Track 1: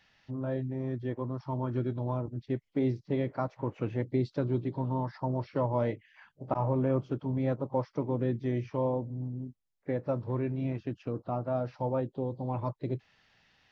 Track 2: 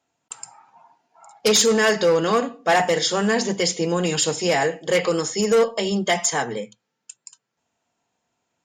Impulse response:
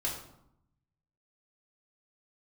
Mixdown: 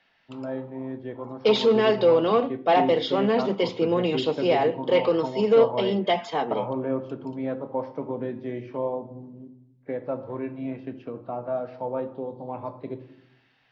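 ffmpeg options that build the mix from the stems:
-filter_complex "[0:a]volume=-0.5dB,asplit=2[link_01][link_02];[link_02]volume=-8.5dB[link_03];[1:a]lowpass=frequency=4000:width=0.5412,lowpass=frequency=4000:width=1.3066,equalizer=frequency=1700:width_type=o:width=0.77:gain=-13,volume=0.5dB[link_04];[2:a]atrim=start_sample=2205[link_05];[link_03][link_05]afir=irnorm=-1:irlink=0[link_06];[link_01][link_04][link_06]amix=inputs=3:normalize=0,acrossover=split=190 4300:gain=0.178 1 0.158[link_07][link_08][link_09];[link_07][link_08][link_09]amix=inputs=3:normalize=0"

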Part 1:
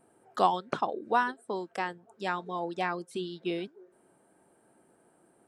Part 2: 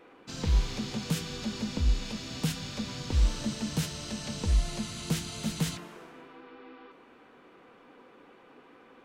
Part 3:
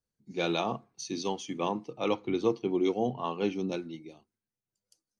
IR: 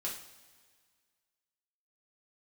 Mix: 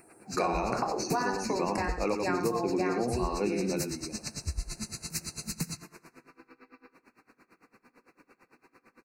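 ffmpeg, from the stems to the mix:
-filter_complex "[0:a]acontrast=51,volume=-5.5dB,asplit=3[link_01][link_02][link_03];[link_02]volume=-3.5dB[link_04];[link_03]volume=-7.5dB[link_05];[1:a]equalizer=frequency=580:width=0.96:gain=-6.5,aeval=exprs='val(0)*pow(10,-26*(0.5-0.5*cos(2*PI*8.9*n/s))/20)':channel_layout=same,volume=1dB,asplit=3[link_06][link_07][link_08];[link_07]volume=-18dB[link_09];[link_08]volume=-13.5dB[link_10];[2:a]volume=2dB,asplit=2[link_11][link_12];[link_12]volume=-6dB[link_13];[link_01][link_06]amix=inputs=2:normalize=0,highshelf=frequency=4400:gain=11.5,acompressor=threshold=-29dB:ratio=6,volume=0dB[link_14];[3:a]atrim=start_sample=2205[link_15];[link_04][link_09]amix=inputs=2:normalize=0[link_16];[link_16][link_15]afir=irnorm=-1:irlink=0[link_17];[link_05][link_10][link_13]amix=inputs=3:normalize=0,aecho=0:1:90:1[link_18];[link_11][link_14][link_17][link_18]amix=inputs=4:normalize=0,asuperstop=centerf=3300:order=12:qfactor=2.6,acompressor=threshold=-25dB:ratio=6"

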